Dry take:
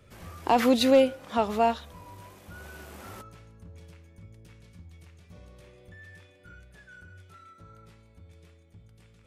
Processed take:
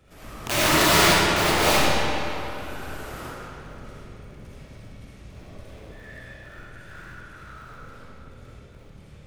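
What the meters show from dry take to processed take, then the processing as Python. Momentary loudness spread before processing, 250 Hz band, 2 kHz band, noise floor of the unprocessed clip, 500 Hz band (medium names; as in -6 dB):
12 LU, 0.0 dB, +15.0 dB, -57 dBFS, -0.5 dB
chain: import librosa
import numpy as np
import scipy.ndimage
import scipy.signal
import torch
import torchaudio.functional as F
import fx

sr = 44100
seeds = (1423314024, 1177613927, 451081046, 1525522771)

y = fx.cycle_switch(x, sr, every=3, mode='inverted')
y = (np.mod(10.0 ** (18.5 / 20.0) * y + 1.0, 2.0) - 1.0) / 10.0 ** (18.5 / 20.0)
y = fx.rev_freeverb(y, sr, rt60_s=3.0, hf_ratio=0.75, predelay_ms=20, drr_db=-9.5)
y = y * 10.0 ** (-1.5 / 20.0)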